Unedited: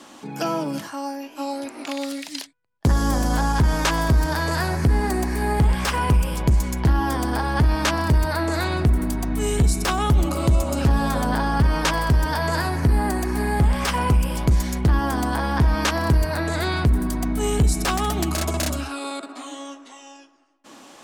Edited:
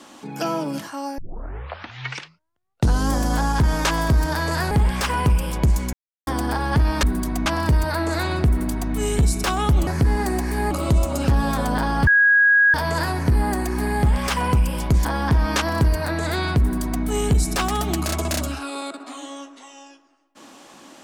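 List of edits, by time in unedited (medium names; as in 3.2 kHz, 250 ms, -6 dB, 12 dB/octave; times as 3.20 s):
1.18 s: tape start 1.95 s
4.71–5.55 s: move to 10.28 s
6.77–7.11 s: mute
11.64–12.31 s: bleep 1.65 kHz -11.5 dBFS
14.62–15.34 s: delete
16.90–17.33 s: copy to 7.87 s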